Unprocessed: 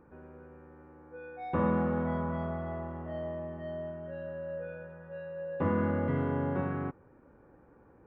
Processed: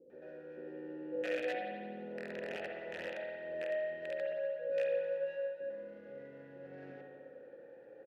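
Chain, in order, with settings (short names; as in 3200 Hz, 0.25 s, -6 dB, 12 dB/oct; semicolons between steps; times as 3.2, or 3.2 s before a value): median filter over 15 samples; low shelf 90 Hz -11 dB; notches 50/100/150/200/250 Hz; negative-ratio compressor -42 dBFS, ratio -1; 0.57–2.57 small resonant body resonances 220/360/2800 Hz, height 11 dB, ringing for 25 ms; wrapped overs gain 29.5 dB; vowel filter e; bands offset in time lows, highs 0.1 s, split 460 Hz; spring tank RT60 1.6 s, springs 58 ms, chirp 30 ms, DRR 1.5 dB; gain +10 dB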